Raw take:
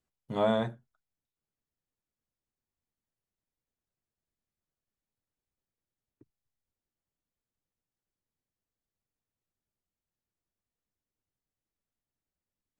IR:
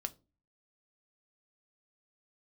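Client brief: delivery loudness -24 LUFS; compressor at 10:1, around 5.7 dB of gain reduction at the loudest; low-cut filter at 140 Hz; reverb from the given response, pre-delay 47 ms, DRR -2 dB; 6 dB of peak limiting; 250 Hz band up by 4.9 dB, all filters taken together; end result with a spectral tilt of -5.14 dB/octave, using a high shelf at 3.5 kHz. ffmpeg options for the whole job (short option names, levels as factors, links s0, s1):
-filter_complex "[0:a]highpass=140,equalizer=f=250:t=o:g=6.5,highshelf=f=3500:g=4.5,acompressor=threshold=0.0562:ratio=10,alimiter=limit=0.0668:level=0:latency=1,asplit=2[s0][s1];[1:a]atrim=start_sample=2205,adelay=47[s2];[s1][s2]afir=irnorm=-1:irlink=0,volume=1.41[s3];[s0][s3]amix=inputs=2:normalize=0,volume=2.82"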